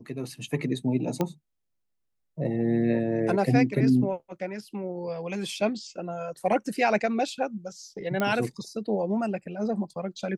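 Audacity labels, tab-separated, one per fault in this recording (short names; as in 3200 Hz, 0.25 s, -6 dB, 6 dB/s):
1.210000	1.210000	pop -13 dBFS
8.200000	8.200000	pop -14 dBFS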